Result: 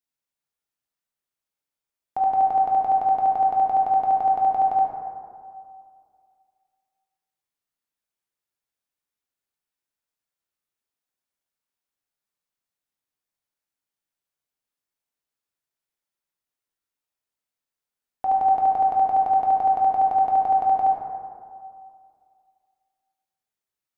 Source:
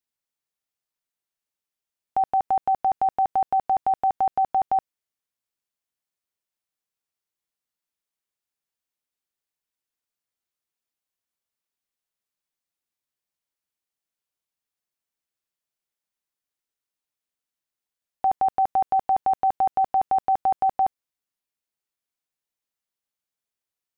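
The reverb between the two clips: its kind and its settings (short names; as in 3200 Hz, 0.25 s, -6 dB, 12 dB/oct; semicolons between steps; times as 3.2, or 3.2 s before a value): plate-style reverb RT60 2.2 s, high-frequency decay 0.35×, DRR -2 dB; gain -3.5 dB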